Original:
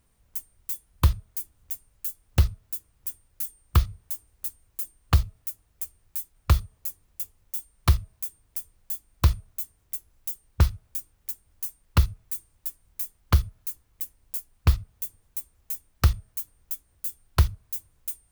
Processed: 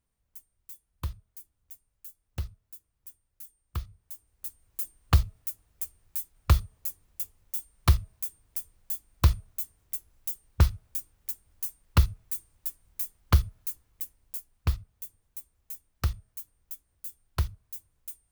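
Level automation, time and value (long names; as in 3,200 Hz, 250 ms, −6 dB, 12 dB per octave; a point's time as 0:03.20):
0:03.82 −14 dB
0:04.81 −1 dB
0:13.69 −1 dB
0:14.89 −8 dB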